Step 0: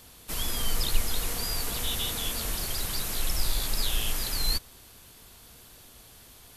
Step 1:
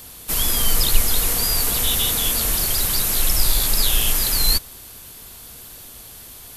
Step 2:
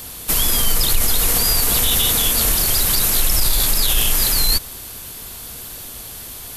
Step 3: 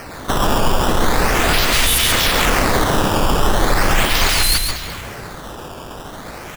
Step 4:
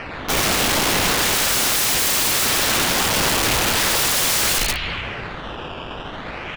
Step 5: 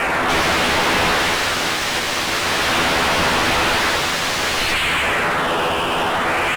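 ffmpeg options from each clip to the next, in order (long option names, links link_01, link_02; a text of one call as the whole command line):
ffmpeg -i in.wav -af "highshelf=frequency=10000:gain=10,volume=8dB" out.wav
ffmpeg -i in.wav -af "alimiter=level_in=12dB:limit=-1dB:release=50:level=0:latency=1,volume=-5.5dB" out.wav
ffmpeg -i in.wav -filter_complex "[0:a]asplit=2[link_01][link_02];[link_02]asplit=5[link_03][link_04][link_05][link_06][link_07];[link_03]adelay=198,afreqshift=-45,volume=-12.5dB[link_08];[link_04]adelay=396,afreqshift=-90,volume=-18dB[link_09];[link_05]adelay=594,afreqshift=-135,volume=-23.5dB[link_10];[link_06]adelay=792,afreqshift=-180,volume=-29dB[link_11];[link_07]adelay=990,afreqshift=-225,volume=-34.6dB[link_12];[link_08][link_09][link_10][link_11][link_12]amix=inputs=5:normalize=0[link_13];[link_01][link_13]amix=inputs=2:normalize=0,acrusher=samples=12:mix=1:aa=0.000001:lfo=1:lforange=19.2:lforate=0.39,asplit=2[link_14][link_15];[link_15]aecho=0:1:136:0.531[link_16];[link_14][link_16]amix=inputs=2:normalize=0" out.wav
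ffmpeg -i in.wav -af "lowpass=frequency=2800:width_type=q:width=2.6,aeval=exprs='(mod(5.01*val(0)+1,2)-1)/5.01':channel_layout=same" out.wav
ffmpeg -i in.wav -filter_complex "[0:a]asplit=2[link_01][link_02];[link_02]adelay=12,volume=-3dB[link_03];[link_01][link_03]amix=inputs=2:normalize=0,asplit=2[link_04][link_05];[link_05]highpass=frequency=720:poles=1,volume=29dB,asoftclip=type=tanh:threshold=-9dB[link_06];[link_04][link_06]amix=inputs=2:normalize=0,lowpass=frequency=1900:poles=1,volume=-6dB,acrossover=split=700[link_07][link_08];[link_08]adynamicsmooth=sensitivity=6.5:basefreq=1300[link_09];[link_07][link_09]amix=inputs=2:normalize=0" out.wav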